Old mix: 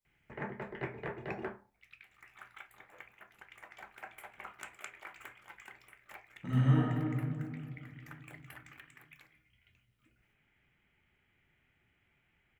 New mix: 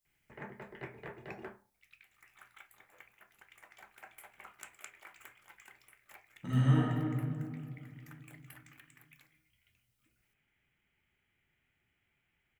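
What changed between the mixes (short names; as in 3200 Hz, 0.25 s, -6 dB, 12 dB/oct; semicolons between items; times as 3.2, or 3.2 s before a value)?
background -6.5 dB; master: add high shelf 4800 Hz +11 dB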